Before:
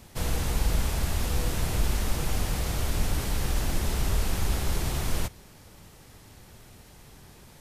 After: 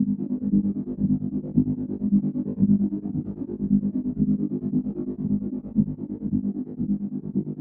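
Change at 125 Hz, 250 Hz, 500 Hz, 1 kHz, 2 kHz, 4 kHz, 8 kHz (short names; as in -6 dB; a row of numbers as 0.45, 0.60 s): +2.0 dB, +16.5 dB, -0.5 dB, under -15 dB, under -30 dB, under -40 dB, under -40 dB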